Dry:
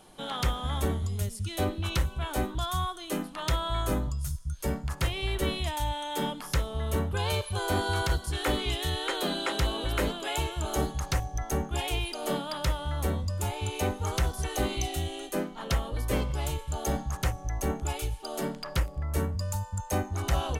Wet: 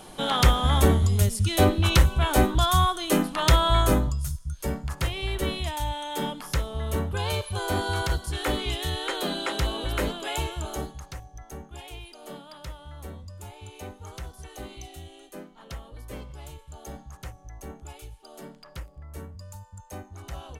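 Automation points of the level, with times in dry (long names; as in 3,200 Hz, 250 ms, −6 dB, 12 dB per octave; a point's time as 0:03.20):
0:03.76 +9.5 dB
0:04.39 +1 dB
0:10.53 +1 dB
0:11.13 −11 dB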